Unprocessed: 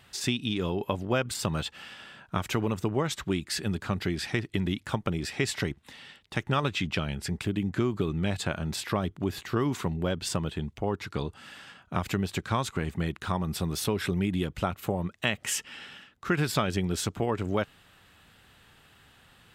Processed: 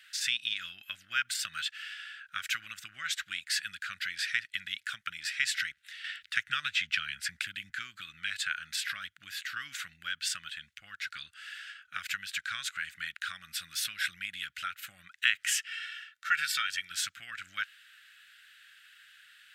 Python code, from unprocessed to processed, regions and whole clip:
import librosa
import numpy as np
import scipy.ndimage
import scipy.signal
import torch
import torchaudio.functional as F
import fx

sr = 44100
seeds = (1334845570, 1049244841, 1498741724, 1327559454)

y = fx.chain(x, sr, fx.low_shelf(hz=290.0, db=5.5),
    fx.band_squash(depth_pct=40), at=(6.04, 7.7))
y = fx.chain(y, sr, fx.highpass(hz=180.0, slope=6),
    fx.comb(ms=2.2, depth=0.57), at=(15.68, 16.91))
y = scipy.signal.sosfilt(scipy.signal.ellip(4, 1.0, 40, 1500.0, 'highpass', fs=sr, output='sos'), y)
y = fx.high_shelf(y, sr, hz=2000.0, db=-9.0)
y = y * librosa.db_to_amplitude(9.0)